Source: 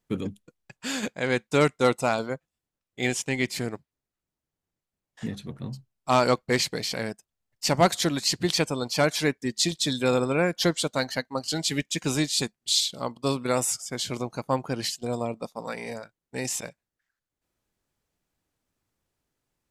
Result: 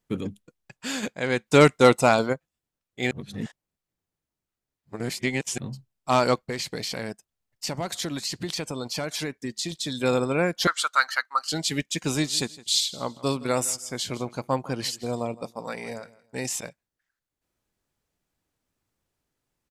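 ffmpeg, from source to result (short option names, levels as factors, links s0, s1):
-filter_complex "[0:a]asplit=3[s0][s1][s2];[s0]afade=t=out:st=1.46:d=0.02[s3];[s1]acontrast=59,afade=t=in:st=1.46:d=0.02,afade=t=out:st=2.32:d=0.02[s4];[s2]afade=t=in:st=2.32:d=0.02[s5];[s3][s4][s5]amix=inputs=3:normalize=0,asettb=1/sr,asplit=3[s6][s7][s8];[s6]atrim=end=6.414[s9];[s7]atrim=start=6.41:end=10.03,asetpts=PTS-STARTPTS,afade=t=in:d=0.004:c=qsin,afade=t=out:st=3.616:d=0.004:c=qsin,acompressor=threshold=0.0501:ratio=6:attack=3.2:release=140:knee=1:detection=peak[s10];[s8]atrim=start=10.026[s11];[s9][s10]acrossfade=d=0.004:c1=hsin:c2=qsin[s12];[s12][s11]acrossfade=d=0.004:c1=qsin:c2=hsin,asettb=1/sr,asplit=3[s13][s14][s15];[s13]atrim=end=10.674[s16];[s14]atrim=start=10.67:end=11.5,asetpts=PTS-STARTPTS,afade=t=in:d=0.004:c=qsin,afade=t=out:st=0.826:d=0.004:c=qsin,highpass=f=1300:t=q:w=7[s17];[s15]atrim=start=11.496[s18];[s16][s17]acrossfade=d=0.004:c1=hsin:c2=qsin[s19];[s19][s18]acrossfade=d=0.004:c1=qsin:c2=hsin,asplit=3[s20][s21][s22];[s20]afade=t=out:st=12.13:d=0.02[s23];[s21]aecho=1:1:163|326:0.106|0.0275,afade=t=in:st=12.13:d=0.02,afade=t=out:st=16.37:d=0.02[s24];[s22]afade=t=in:st=16.37:d=0.02[s25];[s23][s24][s25]amix=inputs=3:normalize=0,asplit=3[s26][s27][s28];[s26]atrim=end=3.112[s29];[s27]atrim=start=3.108:end=5.582,asetpts=PTS-STARTPTS,areverse[s30];[s28]atrim=start=5.578[s31];[s29][s30]acrossfade=d=0.004:c1=hsin:c2=hsin[s32];[s32][s31]acrossfade=d=0.004:c1=hsin:c2=hsin"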